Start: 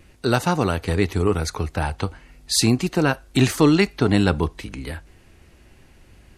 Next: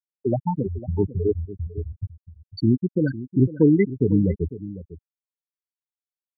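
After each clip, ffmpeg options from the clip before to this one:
ffmpeg -i in.wav -filter_complex "[0:a]afftfilt=real='re*gte(hypot(re,im),0.562)':imag='im*gte(hypot(re,im),0.562)':win_size=1024:overlap=0.75,asplit=2[link_01][link_02];[link_02]adelay=501.5,volume=-15dB,highshelf=frequency=4000:gain=-11.3[link_03];[link_01][link_03]amix=inputs=2:normalize=0" out.wav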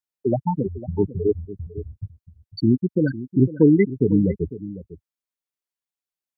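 ffmpeg -i in.wav -af "equalizer=frequency=80:width=1.6:gain=-6.5,volume=2dB" out.wav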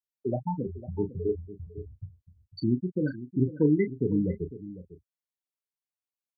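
ffmpeg -i in.wav -filter_complex "[0:a]asplit=2[link_01][link_02];[link_02]adelay=33,volume=-9dB[link_03];[link_01][link_03]amix=inputs=2:normalize=0,volume=-8.5dB" out.wav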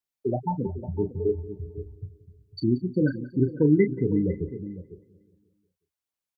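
ffmpeg -i in.wav -af "aphaser=in_gain=1:out_gain=1:delay=2.7:decay=0.26:speed=1.3:type=sinusoidal,aecho=1:1:181|362|543|724|905:0.112|0.0662|0.0391|0.023|0.0136,volume=3dB" out.wav

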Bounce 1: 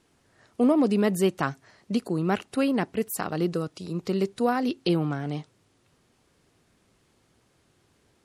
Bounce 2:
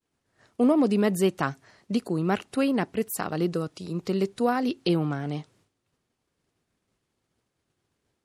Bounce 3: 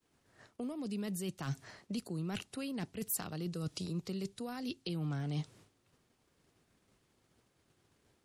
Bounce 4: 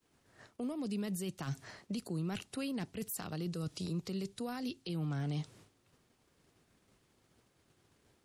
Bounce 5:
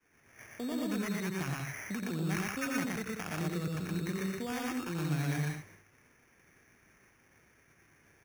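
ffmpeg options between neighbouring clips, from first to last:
ffmpeg -i in.wav -af "agate=range=-33dB:threshold=-56dB:ratio=3:detection=peak" out.wav
ffmpeg -i in.wav -filter_complex "[0:a]areverse,acompressor=threshold=-33dB:ratio=6,areverse,asoftclip=type=hard:threshold=-25dB,acrossover=split=170|3000[link_01][link_02][link_03];[link_02]acompressor=threshold=-47dB:ratio=6[link_04];[link_01][link_04][link_03]amix=inputs=3:normalize=0,volume=4.5dB" out.wav
ffmpeg -i in.wav -af "alimiter=level_in=8dB:limit=-24dB:level=0:latency=1:release=46,volume=-8dB,volume=2dB" out.wav
ffmpeg -i in.wav -filter_complex "[0:a]lowpass=frequency=2300:width_type=q:width=6.8,acrusher=samples=11:mix=1:aa=0.000001,asplit=2[link_01][link_02];[link_02]aecho=0:1:87.46|119.5|189.5:0.501|0.891|0.447[link_03];[link_01][link_03]amix=inputs=2:normalize=0" out.wav

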